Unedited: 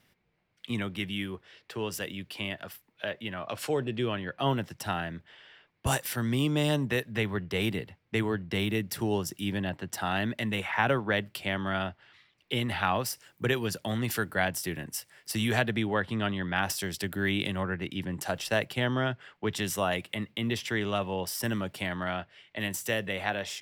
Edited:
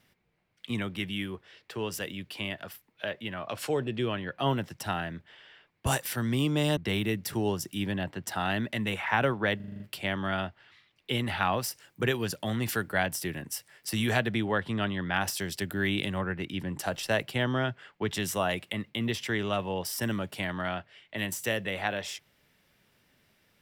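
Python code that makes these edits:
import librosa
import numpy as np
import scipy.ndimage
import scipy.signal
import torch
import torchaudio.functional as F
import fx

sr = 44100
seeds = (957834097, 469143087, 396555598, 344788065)

y = fx.edit(x, sr, fx.cut(start_s=6.77, length_s=1.66),
    fx.stutter(start_s=11.22, slice_s=0.04, count=7), tone=tone)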